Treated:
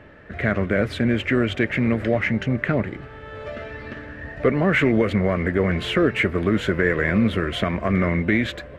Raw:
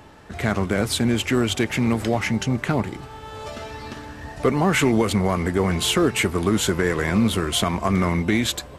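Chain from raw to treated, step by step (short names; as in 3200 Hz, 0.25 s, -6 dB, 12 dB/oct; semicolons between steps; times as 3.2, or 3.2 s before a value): EQ curve 410 Hz 0 dB, 590 Hz +5 dB, 840 Hz -10 dB, 1800 Hz +6 dB, 5300 Hz -16 dB, 8500 Hz -22 dB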